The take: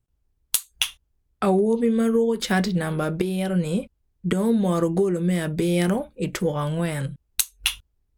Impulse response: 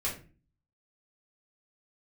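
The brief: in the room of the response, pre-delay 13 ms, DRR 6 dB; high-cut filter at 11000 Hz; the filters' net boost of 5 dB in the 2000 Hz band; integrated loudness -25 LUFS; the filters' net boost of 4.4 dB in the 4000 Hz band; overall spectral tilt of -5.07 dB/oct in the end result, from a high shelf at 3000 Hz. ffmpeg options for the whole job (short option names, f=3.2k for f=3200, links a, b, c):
-filter_complex "[0:a]lowpass=11k,equalizer=f=2k:t=o:g=6.5,highshelf=f=3k:g=-4.5,equalizer=f=4k:t=o:g=6.5,asplit=2[a][b];[1:a]atrim=start_sample=2205,adelay=13[c];[b][c]afir=irnorm=-1:irlink=0,volume=-11dB[d];[a][d]amix=inputs=2:normalize=0,volume=-3dB"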